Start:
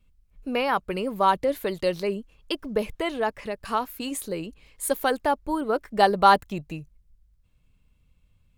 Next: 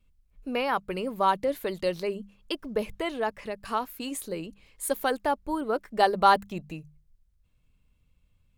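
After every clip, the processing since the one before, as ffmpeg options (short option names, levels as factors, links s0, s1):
-af "bandreject=f=50:t=h:w=6,bandreject=f=100:t=h:w=6,bandreject=f=150:t=h:w=6,bandreject=f=200:t=h:w=6,volume=0.708"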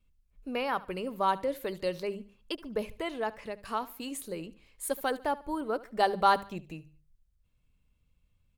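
-af "aecho=1:1:73|146|219:0.112|0.0393|0.0137,volume=0.631"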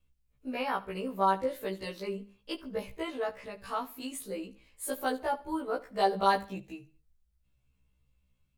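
-af "afftfilt=real='re*1.73*eq(mod(b,3),0)':imag='im*1.73*eq(mod(b,3),0)':win_size=2048:overlap=0.75,volume=1.19"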